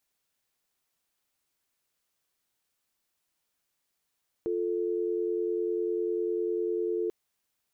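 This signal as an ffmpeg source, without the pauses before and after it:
-f lavfi -i "aevalsrc='0.0335*(sin(2*PI*350*t)+sin(2*PI*440*t))':d=2.64:s=44100"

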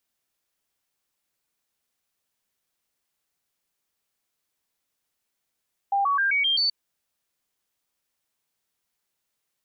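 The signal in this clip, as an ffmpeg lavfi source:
-f lavfi -i "aevalsrc='0.106*clip(min(mod(t,0.13),0.13-mod(t,0.13))/0.005,0,1)*sin(2*PI*797*pow(2,floor(t/0.13)/2)*mod(t,0.13))':d=0.78:s=44100"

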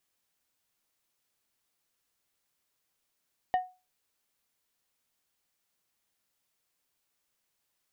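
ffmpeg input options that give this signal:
-f lavfi -i "aevalsrc='0.1*pow(10,-3*t/0.29)*sin(2*PI*736*t)+0.0251*pow(10,-3*t/0.153)*sin(2*PI*1840*t)+0.00631*pow(10,-3*t/0.11)*sin(2*PI*2944*t)+0.00158*pow(10,-3*t/0.094)*sin(2*PI*3680*t)+0.000398*pow(10,-3*t/0.078)*sin(2*PI*4784*t)':d=0.89:s=44100"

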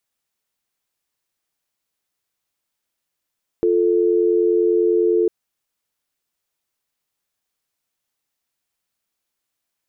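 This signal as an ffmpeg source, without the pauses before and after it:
-f lavfi -i "aevalsrc='0.15*(sin(2*PI*350*t)+sin(2*PI*440*t))':d=1.65:s=44100"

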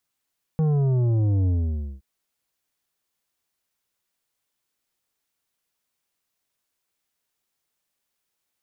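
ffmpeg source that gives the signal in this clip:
-f lavfi -i "aevalsrc='0.112*clip((1.42-t)/0.54,0,1)*tanh(2.82*sin(2*PI*160*1.42/log(65/160)*(exp(log(65/160)*t/1.42)-1)))/tanh(2.82)':d=1.42:s=44100"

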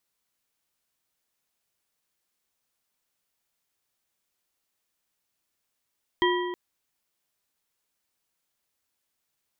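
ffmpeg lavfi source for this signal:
-f lavfi -i "aevalsrc='0.0891*pow(10,-3*t/1.71)*sin(2*PI*357*t)+0.0708*pow(10,-3*t/1.261)*sin(2*PI*984.2*t)+0.0562*pow(10,-3*t/1.031)*sin(2*PI*1929.2*t)+0.0447*pow(10,-3*t/0.887)*sin(2*PI*3189.1*t)':d=0.32:s=44100"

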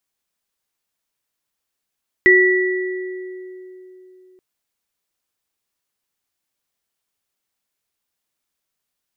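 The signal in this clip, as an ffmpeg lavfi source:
-f lavfi -i "aevalsrc='0.266*pow(10,-3*t/3.47)*sin(2*PI*370*t)+0.422*pow(10,-3*t/1.71)*sin(2*PI*1950*t)':d=2.13:s=44100"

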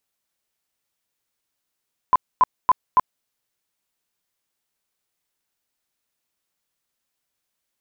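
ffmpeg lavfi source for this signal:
-f lavfi -i "aevalsrc='0.316*sin(2*PI*1010*mod(t,0.28))*lt(mod(t,0.28),27/1010)':d=1.12:s=44100"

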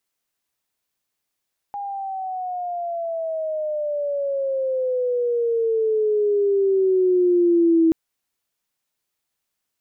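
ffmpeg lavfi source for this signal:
-f lavfi -i "aevalsrc='pow(10,(-12.5+14*(t/6.18-1))/20)*sin(2*PI*815*6.18/(-16*log(2)/12)*(exp(-16*log(2)/12*t/6.18)-1))':d=6.18:s=44100"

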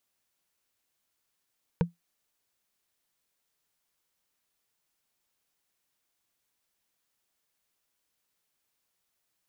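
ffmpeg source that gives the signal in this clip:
-f lavfi -i "aevalsrc='0.141*pow(10,-3*t/0.15)*sin(2*PI*171*t)+0.0891*pow(10,-3*t/0.044)*sin(2*PI*471.4*t)+0.0562*pow(10,-3*t/0.02)*sin(2*PI*924.1*t)+0.0355*pow(10,-3*t/0.011)*sin(2*PI*1527.5*t)+0.0224*pow(10,-3*t/0.007)*sin(2*PI*2281.1*t)':d=0.45:s=44100"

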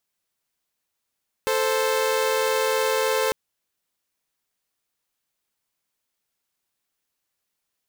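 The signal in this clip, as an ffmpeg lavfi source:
-f lavfi -i "aevalsrc='0.0944*((2*mod(440*t,1)-1)+(2*mod(523.25*t,1)-1))':d=1.85:s=44100"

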